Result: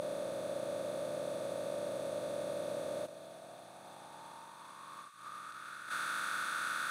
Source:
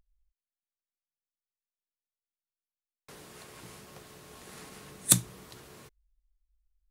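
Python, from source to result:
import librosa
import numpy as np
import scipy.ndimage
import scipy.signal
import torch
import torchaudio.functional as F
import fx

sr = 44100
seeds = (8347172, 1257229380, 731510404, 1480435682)

y = fx.bin_compress(x, sr, power=0.2)
y = fx.over_compress(y, sr, threshold_db=-31.0, ratio=-0.5)
y = fx.peak_eq(y, sr, hz=7300.0, db=-7.0, octaves=0.22)
y = fx.echo_wet_highpass(y, sr, ms=335, feedback_pct=85, hz=1700.0, wet_db=-15.0)
y = fx.filter_sweep_bandpass(y, sr, from_hz=580.0, to_hz=1400.0, start_s=2.92, end_s=5.76, q=7.4)
y = F.gain(torch.from_numpy(y), 14.0).numpy()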